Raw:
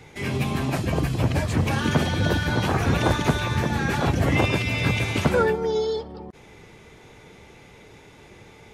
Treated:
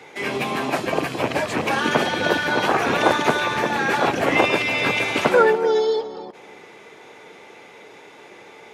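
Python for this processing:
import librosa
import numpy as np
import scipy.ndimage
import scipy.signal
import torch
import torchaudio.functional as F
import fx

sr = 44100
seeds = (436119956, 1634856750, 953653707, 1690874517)

y = fx.rattle_buzz(x, sr, strikes_db=-20.0, level_db=-25.0)
y = scipy.signal.sosfilt(scipy.signal.butter(2, 390.0, 'highpass', fs=sr, output='sos'), y)
y = fx.high_shelf(y, sr, hz=4000.0, db=-8.0)
y = y + 10.0 ** (-16.5 / 20.0) * np.pad(y, (int(290 * sr / 1000.0), 0))[:len(y)]
y = y * librosa.db_to_amplitude(7.5)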